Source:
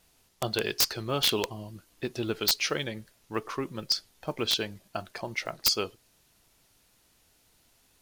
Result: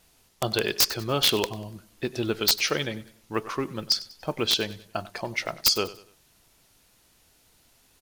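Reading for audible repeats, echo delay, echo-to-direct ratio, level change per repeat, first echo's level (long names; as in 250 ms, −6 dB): 3, 96 ms, −17.5 dB, −8.0 dB, −18.0 dB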